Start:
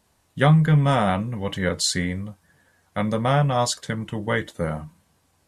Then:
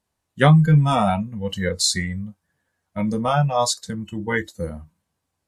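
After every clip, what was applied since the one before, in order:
noise reduction from a noise print of the clip's start 16 dB
level +3 dB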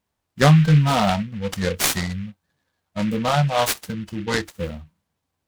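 short delay modulated by noise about 2,100 Hz, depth 0.072 ms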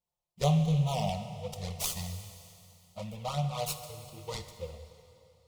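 flanger swept by the level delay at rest 5.7 ms, full sweep at −13.5 dBFS
phaser with its sweep stopped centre 670 Hz, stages 4
convolution reverb RT60 2.7 s, pre-delay 8 ms, DRR 8.5 dB
level −8 dB

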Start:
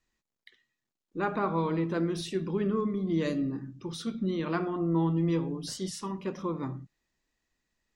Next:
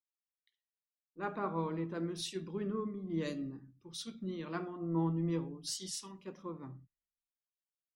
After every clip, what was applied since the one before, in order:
multiband upward and downward expander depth 100%
level −8.5 dB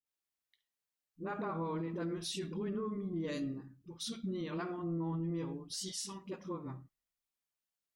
all-pass dispersion highs, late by 63 ms, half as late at 350 Hz
brickwall limiter −33.5 dBFS, peak gain reduction 9.5 dB
level +3 dB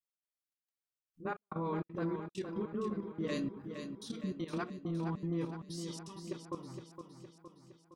output level in coarse steps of 13 dB
gate pattern "xx.xxxx..xx" 198 BPM −60 dB
on a send: repeating echo 464 ms, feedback 55%, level −8 dB
on the sum: level +3.5 dB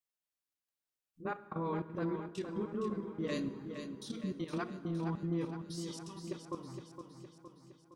convolution reverb RT60 2.8 s, pre-delay 42 ms, DRR 14.5 dB

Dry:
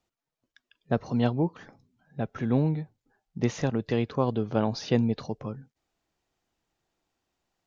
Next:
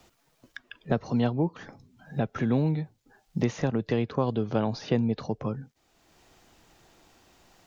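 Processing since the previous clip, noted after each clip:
multiband upward and downward compressor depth 70%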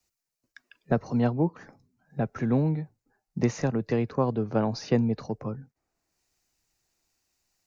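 parametric band 3,300 Hz −13 dB 0.44 octaves
multiband upward and downward expander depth 70%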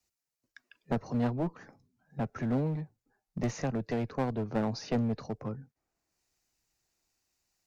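asymmetric clip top −27 dBFS
level −3.5 dB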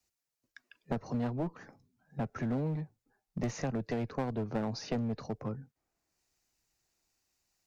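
downward compressor 3 to 1, threshold −30 dBFS, peak gain reduction 5 dB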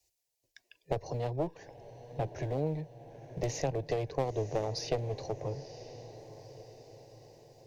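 phaser with its sweep stopped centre 540 Hz, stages 4
feedback delay with all-pass diffusion 969 ms, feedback 52%, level −14 dB
harmonic generator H 4 −23 dB, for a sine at −21.5 dBFS
level +5.5 dB

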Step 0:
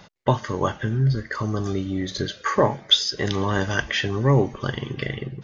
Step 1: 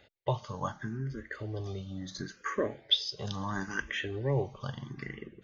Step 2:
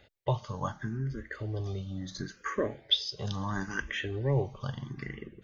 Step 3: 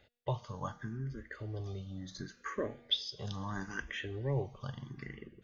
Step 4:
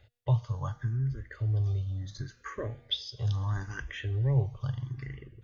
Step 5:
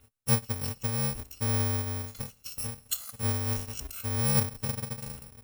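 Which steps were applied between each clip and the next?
frequency shifter mixed with the dry sound +0.73 Hz; level −9 dB
low-shelf EQ 100 Hz +7.5 dB
tuned comb filter 240 Hz, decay 1 s, mix 50%
low shelf with overshoot 150 Hz +8 dB, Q 3
samples in bit-reversed order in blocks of 128 samples

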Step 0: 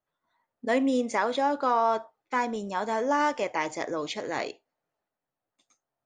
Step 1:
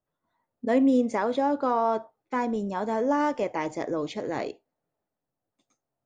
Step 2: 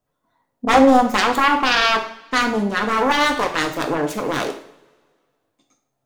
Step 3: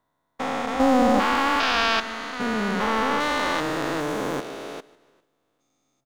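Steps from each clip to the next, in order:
tilt shelving filter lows +6.5 dB, about 710 Hz
phase distortion by the signal itself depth 0.96 ms; coupled-rooms reverb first 0.52 s, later 1.8 s, from −21 dB, DRR 3.5 dB; level +7.5 dB
spectrum averaged block by block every 400 ms; repeating echo 150 ms, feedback 35%, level −20.5 dB; level −1.5 dB

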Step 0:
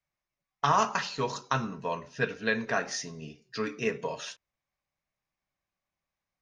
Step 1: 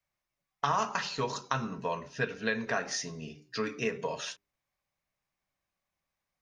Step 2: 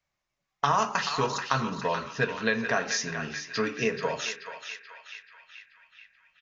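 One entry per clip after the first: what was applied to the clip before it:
mains-hum notches 50/100/150/200/250/300/350/400 Hz; downward compressor 2 to 1, threshold −31 dBFS, peak gain reduction 6.5 dB; level +1.5 dB
on a send: feedback echo with a band-pass in the loop 432 ms, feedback 64%, band-pass 2,200 Hz, level −5.5 dB; on the sum: downsampling to 16,000 Hz; level +4.5 dB

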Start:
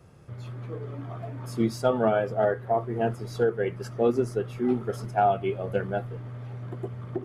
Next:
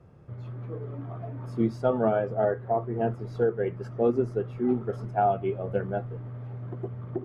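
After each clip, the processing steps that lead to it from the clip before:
low-pass filter 1,100 Hz 6 dB per octave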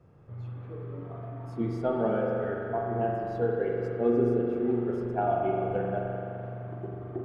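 time-frequency box erased 0:02.07–0:02.73, 600–1,200 Hz
spring reverb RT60 3.2 s, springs 42 ms, chirp 65 ms, DRR −2 dB
level −4.5 dB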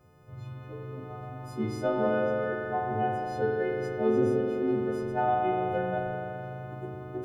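every partial snapped to a pitch grid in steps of 3 semitones

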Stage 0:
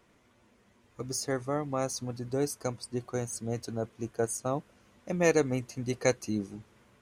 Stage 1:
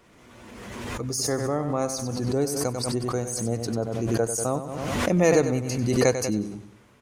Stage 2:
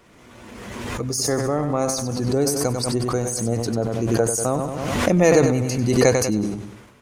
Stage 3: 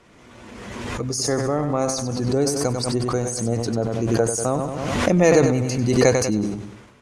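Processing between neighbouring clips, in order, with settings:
dynamic equaliser 2,400 Hz, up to −4 dB, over −47 dBFS, Q 0.8; on a send: repeating echo 95 ms, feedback 42%, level −10 dB; on the sum: background raised ahead of every attack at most 29 dB per second; level +4.5 dB
transient designer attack +4 dB, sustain +8 dB; level +3 dB
low-pass filter 9,000 Hz 12 dB per octave

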